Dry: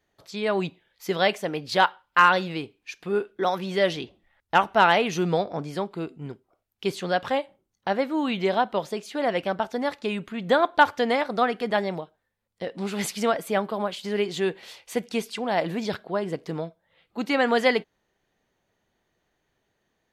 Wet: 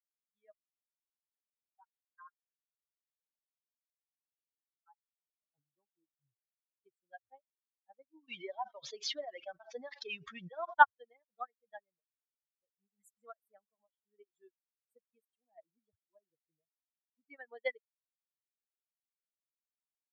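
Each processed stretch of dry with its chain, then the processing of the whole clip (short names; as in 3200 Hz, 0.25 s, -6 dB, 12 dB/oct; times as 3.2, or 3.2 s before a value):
0.52–5.43 LFO band-pass sine 4.5 Hz 850–5700 Hz + level quantiser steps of 24 dB + echo 77 ms -18 dB
8.28–10.74 CVSD 32 kbps + HPF 510 Hz 6 dB/oct + fast leveller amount 100%
whole clip: per-bin expansion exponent 3; dynamic EQ 230 Hz, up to -7 dB, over -45 dBFS, Q 1; upward expander 2.5:1, over -39 dBFS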